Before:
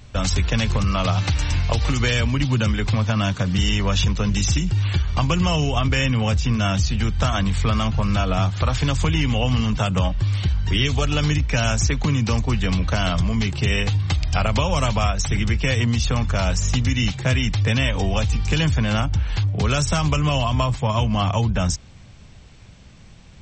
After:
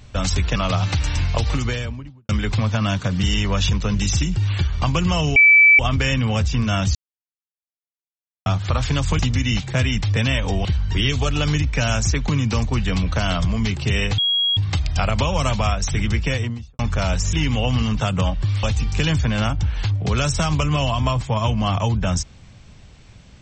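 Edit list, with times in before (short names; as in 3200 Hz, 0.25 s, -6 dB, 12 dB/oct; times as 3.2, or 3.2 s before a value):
0.56–0.91 cut
1.75–2.64 studio fade out
5.71 add tone 2310 Hz -7.5 dBFS 0.43 s
6.87–8.38 mute
9.11–10.41 swap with 16.7–18.16
13.94 add tone 3300 Hz -16 dBFS 0.39 s
15.58–16.16 studio fade out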